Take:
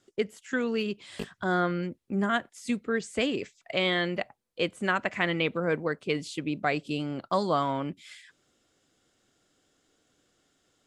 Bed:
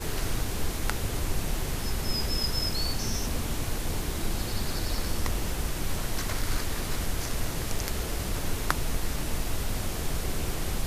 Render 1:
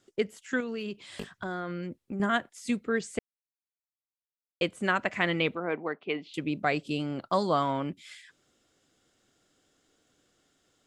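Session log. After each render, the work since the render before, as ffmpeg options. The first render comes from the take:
-filter_complex "[0:a]asettb=1/sr,asplit=3[a][b][c];[a]atrim=end=0.604[d];[b]atrim=start=0.6:end=2.2,asetpts=PTS-STARTPTS,afade=t=in:d=0.004:c=qsin,afade=t=out:st=1.596:d=0.004:c=qsin,acompressor=threshold=-31dB:ratio=6:attack=3.2:release=140:knee=1:detection=peak[e];[c]atrim=start=2.196[f];[d][e]acrossfade=d=0.004:c1=hsin:c2=qsin[g];[g][f]acrossfade=d=0.004:c1=qsin:c2=hsin,asettb=1/sr,asplit=3[h][i][j];[h]atrim=end=5.554[k];[i]atrim=start=5.55:end=6.34,asetpts=PTS-STARTPTS,afade=t=in:d=0.004:c=qsin,afade=t=out:st=0.786:d=0.004:c=qsin,highpass=290,equalizer=f=520:t=q:w=4:g=-7,equalizer=f=760:t=q:w=4:g=5,equalizer=f=1.6k:t=q:w=4:g=-5,lowpass=f=3.1k:w=0.5412,lowpass=f=3.1k:w=1.3066[l];[j]atrim=start=6.336[m];[k][l]acrossfade=d=0.004:c1=hsin:c2=qsin[n];[n][m]acrossfade=d=0.004:c1=qsin:c2=hsin,asplit=3[o][p][q];[o]atrim=end=3.19,asetpts=PTS-STARTPTS,afade=t=out:st=3.186:d=0.004:c=hsin[r];[p]atrim=start=3.19:end=4.61,asetpts=PTS-STARTPTS,volume=0[s];[q]atrim=start=4.61,asetpts=PTS-STARTPTS,afade=t=in:d=0.004:c=hsin[t];[r][s][t]concat=n=3:v=0:a=1"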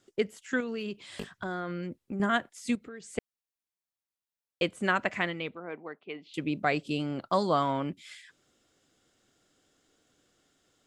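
-filter_complex "[0:a]asettb=1/sr,asplit=3[a][b][c];[a]atrim=end=2.754[d];[b]atrim=start=2.75:end=3.18,asetpts=PTS-STARTPTS,afade=t=in:d=0.004:c=qsin,afade=t=out:st=0.426:d=0.004:c=qsin,acompressor=threshold=-43dB:ratio=4:attack=3.2:release=140:knee=1:detection=peak[e];[c]atrim=start=3.176[f];[d][e]acrossfade=d=0.004:c1=hsin:c2=qsin[g];[g][f]acrossfade=d=0.004:c1=qsin:c2=hsin,asplit=3[h][i][j];[h]atrim=end=5.34,asetpts=PTS-STARTPTS,afade=t=out:st=5.15:d=0.19:silence=0.375837[k];[i]atrim=start=5.34:end=6.21,asetpts=PTS-STARTPTS,volume=-8.5dB[l];[j]atrim=start=6.21,asetpts=PTS-STARTPTS,afade=t=in:d=0.19:silence=0.375837[m];[k][l][m]concat=n=3:v=0:a=1"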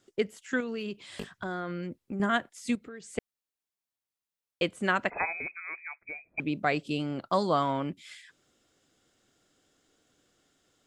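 -filter_complex "[0:a]asettb=1/sr,asplit=3[a][b][c];[a]atrim=end=5.104[d];[b]atrim=start=5.1:end=6.4,asetpts=PTS-STARTPTS,afade=t=in:d=0.004:c=qsin,afade=t=out:st=1.296:d=0.004:c=qsin,lowpass=f=2.3k:t=q:w=0.5098,lowpass=f=2.3k:t=q:w=0.6013,lowpass=f=2.3k:t=q:w=0.9,lowpass=f=2.3k:t=q:w=2.563,afreqshift=-2700[e];[c]atrim=start=6.396[f];[d][e]acrossfade=d=0.004:c1=hsin:c2=qsin[g];[g][f]acrossfade=d=0.004:c1=qsin:c2=hsin"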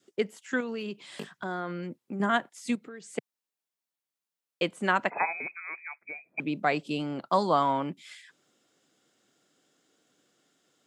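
-af "highpass=f=140:w=0.5412,highpass=f=140:w=1.3066,adynamicequalizer=threshold=0.00562:dfrequency=900:dqfactor=2.5:tfrequency=900:tqfactor=2.5:attack=5:release=100:ratio=0.375:range=3:mode=boostabove:tftype=bell"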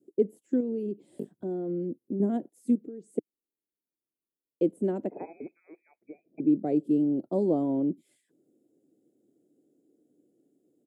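-af "firequalizer=gain_entry='entry(160,0);entry(310,10);entry(1100,-29);entry(5400,-25);entry(10000,-6)':delay=0.05:min_phase=1"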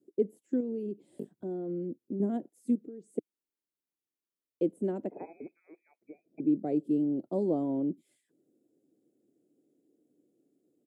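-af "volume=-3.5dB"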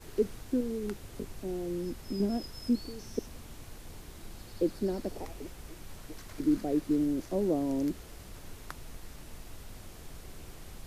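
-filter_complex "[1:a]volume=-16.5dB[a];[0:a][a]amix=inputs=2:normalize=0"

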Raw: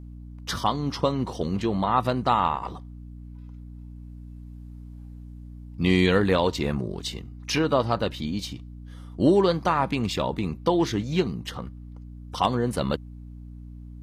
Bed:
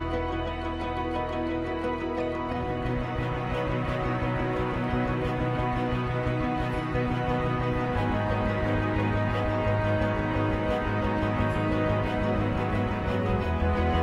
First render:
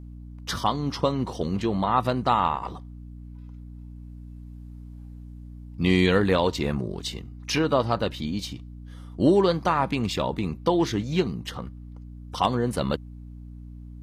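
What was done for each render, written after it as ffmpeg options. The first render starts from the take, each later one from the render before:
-af anull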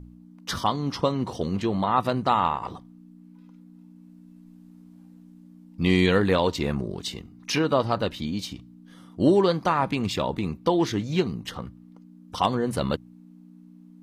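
-af "bandreject=f=60:t=h:w=4,bandreject=f=120:t=h:w=4"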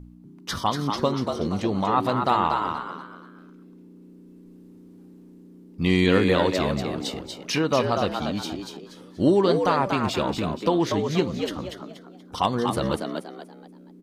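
-filter_complex "[0:a]asplit=5[a][b][c][d][e];[b]adelay=239,afreqshift=92,volume=-5.5dB[f];[c]adelay=478,afreqshift=184,volume=-15.1dB[g];[d]adelay=717,afreqshift=276,volume=-24.8dB[h];[e]adelay=956,afreqshift=368,volume=-34.4dB[i];[a][f][g][h][i]amix=inputs=5:normalize=0"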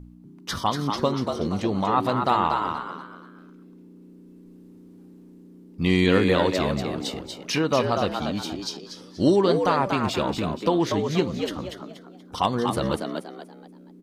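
-filter_complex "[0:a]asettb=1/sr,asplit=3[a][b][c];[a]atrim=end=8.624[d];[b]atrim=start=8.62:end=9.36,asetpts=PTS-STARTPTS,afade=t=in:d=0.004:c=qsin,afade=t=out:st=0.736:d=0.004:c=qsin,equalizer=f=5.2k:t=o:w=0.73:g=14[e];[c]atrim=start=9.356[f];[d][e]acrossfade=d=0.004:c1=hsin:c2=qsin[g];[g][f]acrossfade=d=0.004:c1=qsin:c2=hsin"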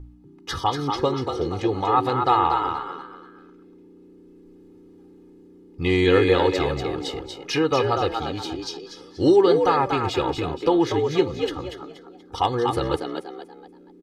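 -af "highshelf=f=7.4k:g=-11.5,aecho=1:1:2.4:0.83"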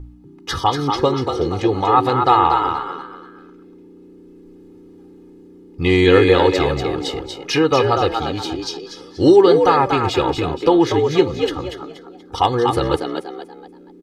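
-af "volume=5.5dB,alimiter=limit=-1dB:level=0:latency=1"

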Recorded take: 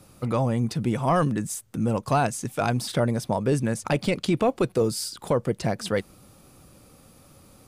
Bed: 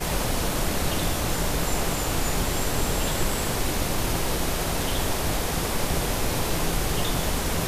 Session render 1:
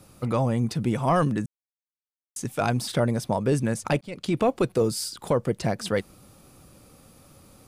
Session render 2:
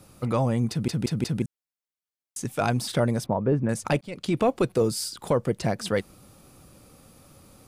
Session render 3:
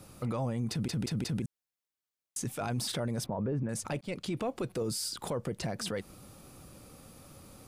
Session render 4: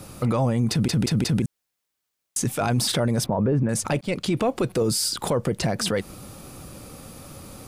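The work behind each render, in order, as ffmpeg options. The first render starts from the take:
-filter_complex "[0:a]asplit=4[a][b][c][d];[a]atrim=end=1.46,asetpts=PTS-STARTPTS,afade=t=out:st=1.456:d=0.004:c=hsin[e];[b]atrim=start=1.46:end=2.36,asetpts=PTS-STARTPTS,volume=0[f];[c]atrim=start=2.36:end=4.01,asetpts=PTS-STARTPTS,afade=t=in:d=0.004:c=hsin,afade=t=out:st=1.646:d=0.004:c=hsin[g];[d]atrim=start=4.01,asetpts=PTS-STARTPTS,afade=t=in:d=0.4[h];[e][f][g][h]concat=n=4:v=0:a=1"
-filter_complex "[0:a]asettb=1/sr,asplit=3[a][b][c];[a]atrim=end=3.264[d];[b]atrim=start=3.26:end=3.69,asetpts=PTS-STARTPTS,afade=t=in:d=0.004:c=qsin,afade=t=out:st=0.426:d=0.004:c=qsin,lowpass=1.3k[e];[c]atrim=start=3.686[f];[d][e]acrossfade=d=0.004:c1=hsin:c2=qsin[g];[g][f]acrossfade=d=0.004:c1=qsin:c2=hsin,asplit=5[h][i][j][k][l];[h]atrim=end=0.882[m];[i]atrim=start=0.698:end=0.882[n];[j]atrim=start=0.698:end=0.882[o];[k]atrim=start=0.698:end=0.882[p];[l]atrim=start=1.418[q];[m][n]acrossfade=d=0.004:c1=hsin:c2=hsin[r];[r][o]acrossfade=d=0.004:c1=hsin:c2=hsin[s];[s][p]acrossfade=d=0.004:c1=hsin:c2=hsin[t];[t][q]acrossfade=d=0.004:c1=hsin:c2=hsin"
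-af "acompressor=threshold=-23dB:ratio=6,alimiter=level_in=2dB:limit=-24dB:level=0:latency=1:release=23,volume=-2dB"
-af "volume=11dB"

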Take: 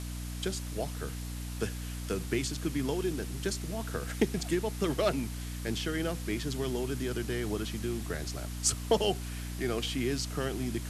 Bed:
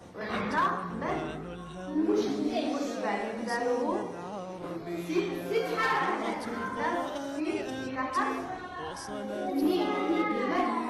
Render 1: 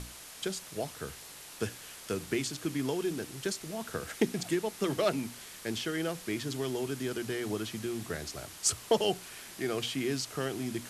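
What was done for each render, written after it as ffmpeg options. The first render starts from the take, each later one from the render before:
-af "bandreject=f=60:t=h:w=6,bandreject=f=120:t=h:w=6,bandreject=f=180:t=h:w=6,bandreject=f=240:t=h:w=6,bandreject=f=300:t=h:w=6"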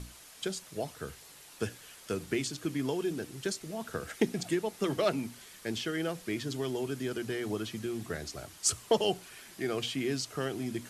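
-af "afftdn=nr=6:nf=-48"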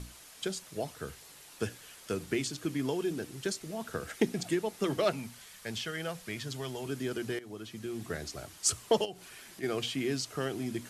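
-filter_complex "[0:a]asettb=1/sr,asplit=3[a][b][c];[a]atrim=end=5.104[d];[b]atrim=start=5.1:end=6.86,asetpts=PTS-STARTPTS,afade=t=in:d=0.004:c=qsin,afade=t=out:st=1.756:d=0.004:c=qsin,equalizer=f=320:t=o:w=0.77:g=-11[e];[c]atrim=start=6.856[f];[d][e]acrossfade=d=0.004:c1=hsin:c2=qsin[g];[g][f]acrossfade=d=0.004:c1=qsin:c2=hsin,asplit=3[h][i][j];[h]afade=t=out:st=9.04:d=0.02[k];[i]acompressor=threshold=-44dB:ratio=2.5:attack=3.2:release=140:knee=1:detection=peak,afade=t=in:st=9.04:d=0.02,afade=t=out:st=9.62:d=0.02[l];[j]afade=t=in:st=9.62:d=0.02[m];[k][l][m]amix=inputs=3:normalize=0,asplit=2[n][o];[n]atrim=end=7.39,asetpts=PTS-STARTPTS,afade=t=out:st=7.386:d=0.004:c=hsin:silence=0.158489[p];[o]atrim=start=7.39,asetpts=PTS-STARTPTS,afade=t=in:d=0.73:silence=0.158489[q];[p][q]concat=n=2:v=0:a=1"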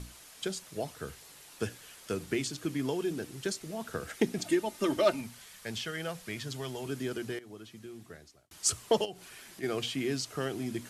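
-filter_complex "[0:a]asettb=1/sr,asplit=3[a][b][c];[a]atrim=end=4.384[d];[b]atrim=start=4.38:end=5.21,asetpts=PTS-STARTPTS,afade=t=in:d=0.004:c=qsin,afade=t=out:st=0.826:d=0.004:c=qsin,aecho=1:1:3.3:0.65,atrim=end_sample=36603[e];[c]atrim=start=5.206[f];[d][e]acrossfade=d=0.004:c1=hsin:c2=qsin[g];[g][f]acrossfade=d=0.004:c1=qsin:c2=hsin,asplit=2[h][i];[h]atrim=end=8.51,asetpts=PTS-STARTPTS,afade=t=out:st=7.02:d=1.49[j];[i]atrim=start=8.51,asetpts=PTS-STARTPTS,afade=t=in:d=0.004:c=hsin[k];[j][k]concat=n=2:v=0:a=1"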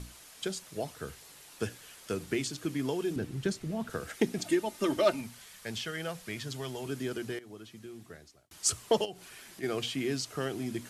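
-filter_complex "[0:a]asettb=1/sr,asplit=3[a][b][c];[a]atrim=end=3.164[d];[b]atrim=start=3.16:end=3.9,asetpts=PTS-STARTPTS,afade=t=in:d=0.004:c=qsin,afade=t=out:st=0.736:d=0.004:c=qsin,bass=f=250:g=10,treble=f=4k:g=-6[e];[c]atrim=start=3.896[f];[d][e]acrossfade=d=0.004:c1=hsin:c2=qsin[g];[g][f]acrossfade=d=0.004:c1=qsin:c2=hsin"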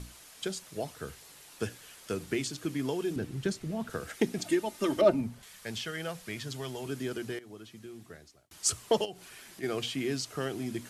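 -filter_complex "[0:a]asettb=1/sr,asplit=3[a][b][c];[a]atrim=end=5.014[d];[b]atrim=start=5.01:end=5.43,asetpts=PTS-STARTPTS,afade=t=in:d=0.004:c=qsin,afade=t=out:st=0.416:d=0.004:c=qsin,tiltshelf=f=930:g=9[e];[c]atrim=start=5.426[f];[d][e]acrossfade=d=0.004:c1=hsin:c2=qsin[g];[g][f]acrossfade=d=0.004:c1=qsin:c2=hsin"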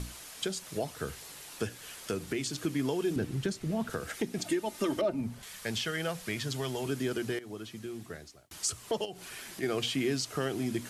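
-filter_complex "[0:a]asplit=2[a][b];[b]acompressor=threshold=-39dB:ratio=6,volume=-0.5dB[c];[a][c]amix=inputs=2:normalize=0,alimiter=limit=-20.5dB:level=0:latency=1:release=245"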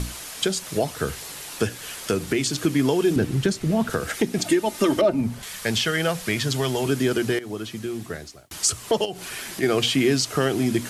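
-af "volume=10.5dB"

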